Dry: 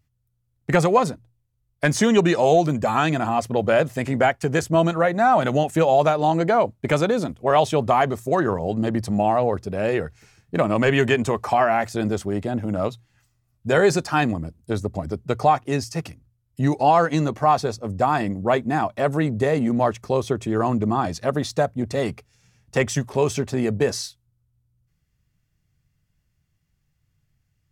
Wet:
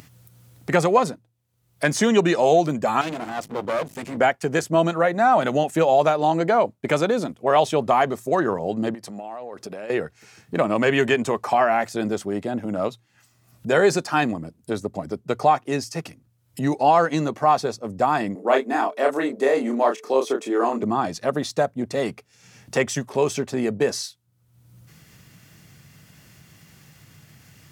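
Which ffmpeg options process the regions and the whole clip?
ffmpeg -i in.wav -filter_complex "[0:a]asettb=1/sr,asplit=3[link_01][link_02][link_03];[link_01]atrim=end=3.014[link_04];[link_02]atrim=start=3.01:end=4.17,asetpts=PTS-STARTPTS,afade=type=in:duration=0.004:curve=qsin,afade=type=out:start_time=1.156:duration=0.004:curve=qsin,equalizer=frequency=1400:width=1.1:gain=-4.5,aeval=exprs='val(0)+0.0126*(sin(2*PI*50*n/s)+sin(2*PI*2*50*n/s)/2+sin(2*PI*3*50*n/s)/3+sin(2*PI*4*50*n/s)/4+sin(2*PI*5*50*n/s)/5)':channel_layout=same,aeval=exprs='max(val(0),0)':channel_layout=same[link_05];[link_03]atrim=start=4.166[link_06];[link_04][link_05]acrossfade=duration=0.004:curve1=hsin:curve2=qsin[link_07];[link_07][link_06]acrossfade=duration=0.004:curve1=qsin:curve2=hsin,asettb=1/sr,asplit=3[link_08][link_09][link_10];[link_08]atrim=end=8.944[link_11];[link_09]atrim=start=8.94:end=9.9,asetpts=PTS-STARTPTS,afade=type=in:duration=0.004:curve=qsin,afade=type=out:start_time=0.956:duration=0.004:curve=qsin,highpass=frequency=330:poles=1,acompressor=threshold=-33dB:ratio=10:attack=3.2:release=140:knee=1:detection=peak[link_12];[link_10]atrim=start=9.896[link_13];[link_11][link_12]acrossfade=duration=0.004:curve1=hsin:curve2=qsin[link_14];[link_14][link_13]acrossfade=duration=0.004:curve1=qsin:curve2=hsin,asettb=1/sr,asplit=3[link_15][link_16][link_17];[link_15]atrim=end=18.354[link_18];[link_16]atrim=start=18.35:end=20.83,asetpts=PTS-STARTPTS,afade=type=in:duration=0.004:curve=qsin,afade=type=out:start_time=2.476:duration=0.004:curve=qsin,aeval=exprs='val(0)+0.00562*sin(2*PI*440*n/s)':channel_layout=same,highpass=frequency=270:width=0.5412,highpass=frequency=270:width=1.3066,asplit=2[link_19][link_20];[link_20]adelay=30,volume=-4dB[link_21];[link_19][link_21]amix=inputs=2:normalize=0,atrim=end_sample=109368[link_22];[link_17]atrim=start=20.826[link_23];[link_18][link_22]acrossfade=duration=0.004:curve1=hsin:curve2=qsin[link_24];[link_24][link_23]acrossfade=duration=0.004:curve1=qsin:curve2=hsin,highpass=180,acompressor=mode=upward:threshold=-28dB:ratio=2.5" out.wav

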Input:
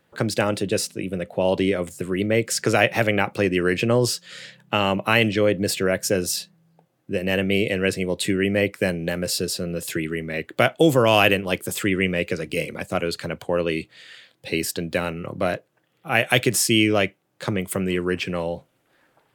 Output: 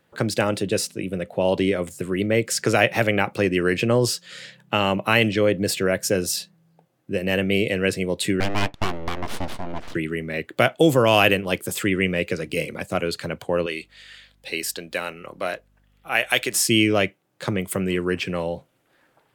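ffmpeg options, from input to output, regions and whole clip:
ffmpeg -i in.wav -filter_complex "[0:a]asettb=1/sr,asplit=3[link_01][link_02][link_03];[link_01]atrim=end=8.404[link_04];[link_02]atrim=start=8.4:end=9.95,asetpts=PTS-STARTPTS,afade=type=in:duration=0.004:curve=qsin,afade=type=out:start_time=1.546:duration=0.004:curve=qsin,aeval=exprs='abs(val(0))':channel_layout=same,adynamicsmooth=sensitivity=7.5:basefreq=2200[link_05];[link_03]atrim=start=9.946[link_06];[link_04][link_05]acrossfade=duration=0.004:curve1=hsin:curve2=qsin[link_07];[link_07][link_06]acrossfade=duration=0.004:curve1=qsin:curve2=hsin,asettb=1/sr,asplit=3[link_08][link_09][link_10];[link_08]atrim=end=13.664[link_11];[link_09]atrim=start=13.66:end=16.56,asetpts=PTS-STARTPTS,afade=type=in:duration=0.004:curve=qsin,afade=type=out:start_time=2.896:duration=0.004:curve=qsin,highpass=frequency=760:poles=1,aeval=exprs='val(0)+0.001*(sin(2*PI*50*n/s)+sin(2*PI*2*50*n/s)/2+sin(2*PI*3*50*n/s)/3+sin(2*PI*4*50*n/s)/4+sin(2*PI*5*50*n/s)/5)':channel_layout=same[link_12];[link_10]atrim=start=16.556[link_13];[link_11][link_12]acrossfade=duration=0.004:curve1=hsin:curve2=qsin[link_14];[link_14][link_13]acrossfade=duration=0.004:curve1=qsin:curve2=hsin" out.wav

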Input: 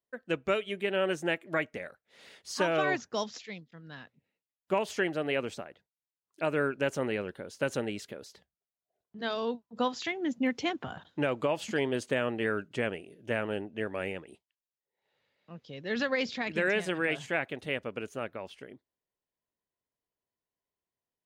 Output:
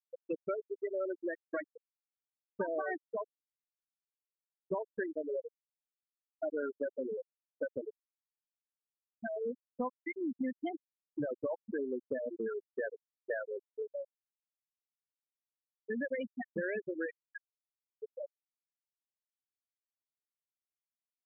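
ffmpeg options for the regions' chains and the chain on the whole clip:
ffmpeg -i in.wav -filter_complex "[0:a]asettb=1/sr,asplit=3[link_01][link_02][link_03];[link_01]atrim=end=12.764[link_04];[link_02]atrim=start=12.76:end=13.47,asetpts=PTS-STARTPTS,afade=type=in:duration=0.004:curve=qsin,afade=type=out:start_time=0.706:duration=0.004:curve=qsin,acontrast=37,highpass=frequency=560:poles=1[link_05];[link_03]atrim=start=13.466[link_06];[link_04][link_05]acrossfade=duration=0.004:curve1=hsin:curve2=qsin[link_07];[link_07][link_06]acrossfade=duration=0.004:curve1=qsin:curve2=hsin,asettb=1/sr,asplit=3[link_08][link_09][link_10];[link_08]atrim=end=17.104[link_11];[link_09]atrim=start=17.1:end=17.99,asetpts=PTS-STARTPTS,afade=type=in:duration=0.004:curve=qsin,afade=type=out:start_time=0.886:duration=0.004:curve=qsin,highpass=1500,acrusher=bits=8:mix=0:aa=0.5[link_12];[link_10]atrim=start=17.986[link_13];[link_11][link_12]acrossfade=duration=0.004:curve1=hsin:curve2=qsin[link_14];[link_14][link_13]acrossfade=duration=0.004:curve1=qsin:curve2=hsin,afftfilt=real='re*gte(hypot(re,im),0.158)':imag='im*gte(hypot(re,im),0.158)':win_size=1024:overlap=0.75,lowpass=2200,acompressor=threshold=-40dB:ratio=2.5,volume=3dB" out.wav

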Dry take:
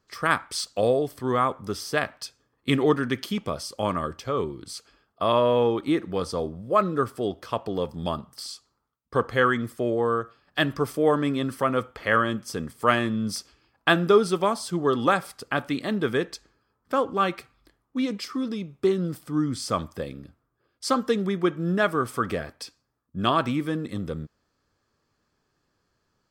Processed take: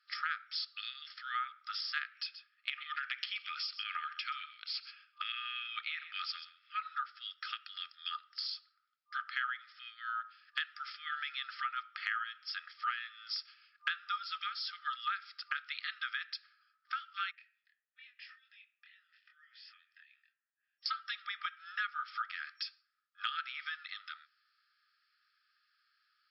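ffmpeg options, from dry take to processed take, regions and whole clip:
ffmpeg -i in.wav -filter_complex "[0:a]asettb=1/sr,asplit=3[link_01][link_02][link_03];[link_01]atrim=end=2.154[link_04];[link_02]atrim=start=2.15:end=6.86,asetpts=PTS-STARTPTS,afade=type=in:duration=0.004:curve=qsin,afade=type=out:start_time=4.706:duration=0.004:curve=qsin,equalizer=frequency=2500:width_type=o:width=0.61:gain=9,acompressor=threshold=-23dB:ratio=6:attack=3.2:release=140:knee=1:detection=peak,aecho=1:1:128:0.15,atrim=end_sample=207711[link_05];[link_03]atrim=start=6.856[link_06];[link_04][link_05]acrossfade=duration=0.004:curve1=hsin:curve2=qsin[link_07];[link_07][link_06]acrossfade=duration=0.004:curve1=qsin:curve2=hsin,asettb=1/sr,asplit=3[link_08][link_09][link_10];[link_08]atrim=end=17.314[link_11];[link_09]atrim=start=17.31:end=20.86,asetpts=PTS-STARTPTS,afade=type=in:duration=0.004:curve=qsin,afade=type=out:start_time=3.546:duration=0.004:curve=qsin,asplit=3[link_12][link_13][link_14];[link_12]bandpass=frequency=530:width_type=q:width=8,volume=0dB[link_15];[link_13]bandpass=frequency=1840:width_type=q:width=8,volume=-6dB[link_16];[link_14]bandpass=frequency=2480:width_type=q:width=8,volume=-9dB[link_17];[link_15][link_16][link_17]amix=inputs=3:normalize=0,acompressor=threshold=-50dB:ratio=2.5:attack=3.2:release=140:knee=1:detection=peak,asplit=2[link_18][link_19];[link_19]adelay=25,volume=-4dB[link_20];[link_18][link_20]amix=inputs=2:normalize=0,atrim=end_sample=156555[link_21];[link_10]atrim=start=20.856[link_22];[link_11][link_21]acrossfade=duration=0.004:curve1=hsin:curve2=qsin[link_23];[link_23][link_22]acrossfade=duration=0.004:curve1=qsin:curve2=hsin,afftfilt=real='re*between(b*sr/4096,1200,5500)':imag='im*between(b*sr/4096,1200,5500)':win_size=4096:overlap=0.75,acompressor=threshold=-39dB:ratio=4,volume=3dB" out.wav

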